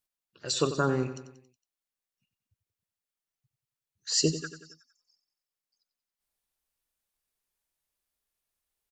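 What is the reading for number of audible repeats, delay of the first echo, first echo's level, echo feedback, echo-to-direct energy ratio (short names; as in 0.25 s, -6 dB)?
4, 92 ms, -12.0 dB, 51%, -10.5 dB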